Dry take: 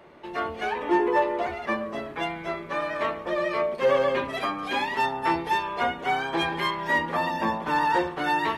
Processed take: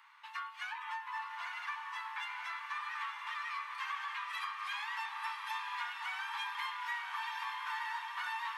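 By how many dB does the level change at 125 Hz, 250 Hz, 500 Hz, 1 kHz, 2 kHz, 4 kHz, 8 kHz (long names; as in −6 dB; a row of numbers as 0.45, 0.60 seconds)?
below −40 dB, below −40 dB, below −40 dB, −13.5 dB, −9.5 dB, −9.0 dB, can't be measured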